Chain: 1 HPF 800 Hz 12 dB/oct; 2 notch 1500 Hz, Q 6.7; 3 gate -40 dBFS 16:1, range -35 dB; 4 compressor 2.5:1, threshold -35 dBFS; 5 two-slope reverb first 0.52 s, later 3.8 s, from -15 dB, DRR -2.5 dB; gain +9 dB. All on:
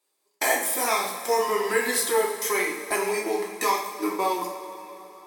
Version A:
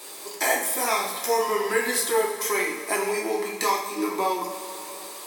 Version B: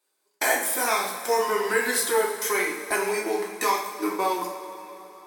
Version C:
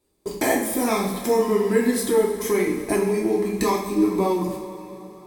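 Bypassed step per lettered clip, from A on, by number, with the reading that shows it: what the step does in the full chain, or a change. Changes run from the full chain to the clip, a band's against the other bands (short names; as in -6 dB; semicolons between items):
3, momentary loudness spread change +2 LU; 2, 2 kHz band +1.5 dB; 1, 250 Hz band +15.5 dB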